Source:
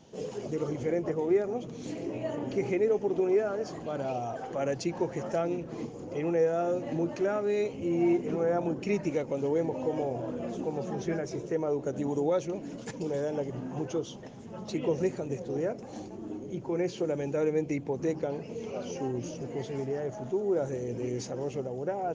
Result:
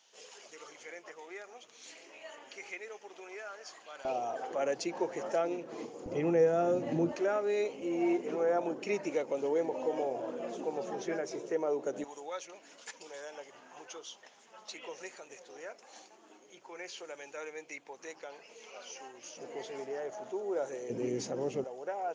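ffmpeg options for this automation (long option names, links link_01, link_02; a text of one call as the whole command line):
ffmpeg -i in.wav -af "asetnsamples=nb_out_samples=441:pad=0,asendcmd='4.05 highpass f 400;6.06 highpass f 110;7.12 highpass f 400;12.04 highpass f 1200;19.37 highpass f 560;20.9 highpass f 180;21.64 highpass f 680',highpass=1500" out.wav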